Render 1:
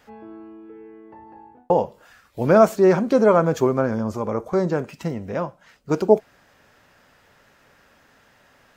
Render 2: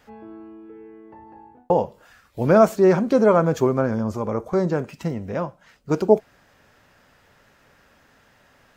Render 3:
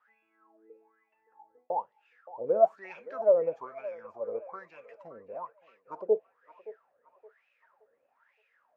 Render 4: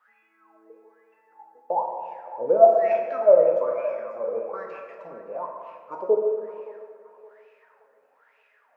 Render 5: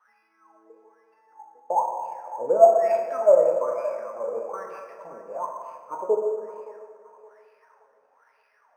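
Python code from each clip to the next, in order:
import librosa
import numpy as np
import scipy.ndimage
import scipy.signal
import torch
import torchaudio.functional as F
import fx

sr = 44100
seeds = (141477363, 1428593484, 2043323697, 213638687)

y1 = fx.low_shelf(x, sr, hz=170.0, db=4.0)
y1 = y1 * librosa.db_to_amplitude(-1.0)
y2 = fx.wah_lfo(y1, sr, hz=1.1, low_hz=470.0, high_hz=2600.0, q=13.0)
y2 = fx.echo_banded(y2, sr, ms=570, feedback_pct=45, hz=1100.0, wet_db=-14.0)
y3 = scipy.signal.sosfilt(scipy.signal.butter(2, 180.0, 'highpass', fs=sr, output='sos'), y2)
y3 = fx.rev_plate(y3, sr, seeds[0], rt60_s=1.9, hf_ratio=0.55, predelay_ms=0, drr_db=1.5)
y3 = y3 * librosa.db_to_amplitude(5.5)
y4 = fx.peak_eq(y3, sr, hz=980.0, db=7.0, octaves=1.0)
y4 = np.interp(np.arange(len(y4)), np.arange(len(y4))[::6], y4[::6])
y4 = y4 * librosa.db_to_amplitude(-3.0)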